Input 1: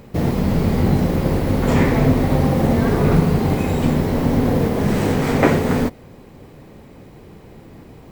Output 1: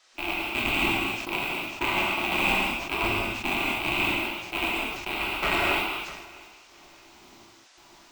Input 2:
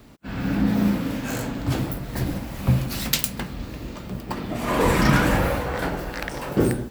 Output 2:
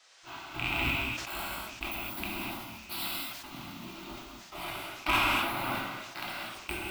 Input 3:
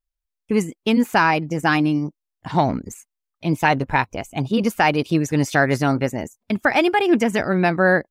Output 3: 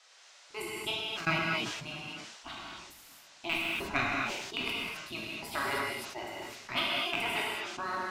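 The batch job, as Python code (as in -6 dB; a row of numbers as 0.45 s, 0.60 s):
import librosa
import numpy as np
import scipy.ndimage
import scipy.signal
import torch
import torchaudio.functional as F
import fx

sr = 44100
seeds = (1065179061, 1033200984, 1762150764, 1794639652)

p1 = fx.rattle_buzz(x, sr, strikes_db=-19.0, level_db=-9.0)
p2 = fx.peak_eq(p1, sr, hz=1900.0, db=8.5, octaves=0.23)
p3 = fx.fixed_phaser(p2, sr, hz=1800.0, stages=6)
p4 = fx.level_steps(p3, sr, step_db=18)
p5 = p3 + (p4 * 10.0 ** (0.0 / 20.0))
p6 = fx.spec_gate(p5, sr, threshold_db=-10, keep='weak')
p7 = 10.0 ** (-9.5 / 20.0) * np.tanh(p6 / 10.0 ** (-9.5 / 20.0))
p8 = fx.step_gate(p7, sr, bpm=83, pattern='.x.xx..x.', floor_db=-24.0, edge_ms=4.5)
p9 = fx.dmg_noise_band(p8, sr, seeds[0], low_hz=530.0, high_hz=6700.0, level_db=-55.0)
p10 = p9 + fx.echo_feedback(p9, sr, ms=653, feedback_pct=33, wet_db=-23, dry=0)
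p11 = fx.rev_gated(p10, sr, seeds[1], gate_ms=280, shape='flat', drr_db=-4.5)
p12 = fx.sustainer(p11, sr, db_per_s=43.0)
y = p12 * 10.0 ** (-8.0 / 20.0)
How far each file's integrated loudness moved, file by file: -8.0 LU, -9.0 LU, -13.5 LU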